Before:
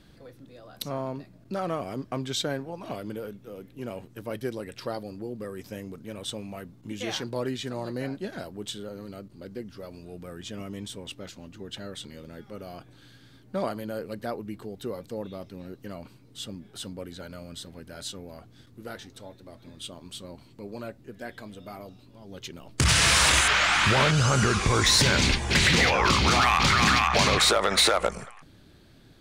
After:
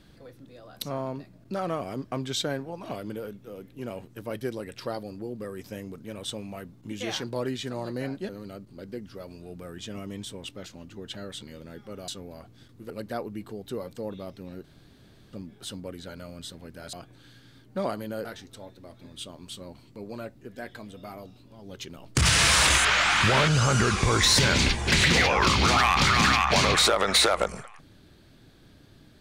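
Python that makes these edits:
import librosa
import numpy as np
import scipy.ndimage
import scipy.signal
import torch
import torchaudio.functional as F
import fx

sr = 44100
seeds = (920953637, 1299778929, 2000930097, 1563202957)

y = fx.edit(x, sr, fx.cut(start_s=8.29, length_s=0.63),
    fx.swap(start_s=12.71, length_s=1.32, other_s=18.06, other_length_s=0.82),
    fx.room_tone_fill(start_s=15.77, length_s=0.69), tone=tone)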